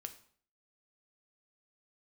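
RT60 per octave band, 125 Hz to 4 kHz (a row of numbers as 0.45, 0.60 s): 0.60, 0.55, 0.55, 0.50, 0.50, 0.45 s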